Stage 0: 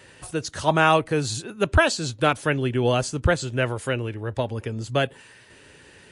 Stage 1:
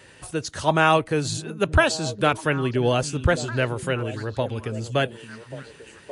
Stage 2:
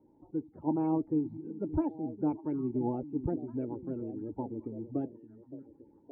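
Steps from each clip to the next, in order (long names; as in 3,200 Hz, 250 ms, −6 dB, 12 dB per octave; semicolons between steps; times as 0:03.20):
echo through a band-pass that steps 568 ms, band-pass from 190 Hz, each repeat 1.4 octaves, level −8.5 dB
spectral magnitudes quantised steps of 30 dB; low-pass that shuts in the quiet parts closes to 1,200 Hz, open at −20 dBFS; formant resonators in series u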